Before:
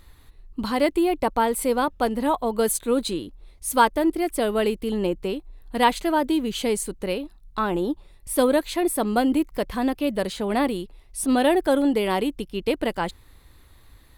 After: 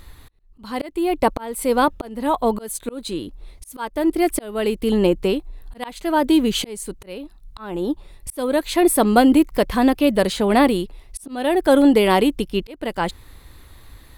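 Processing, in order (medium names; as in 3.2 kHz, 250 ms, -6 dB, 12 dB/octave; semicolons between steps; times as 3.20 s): slow attack 529 ms; trim +7.5 dB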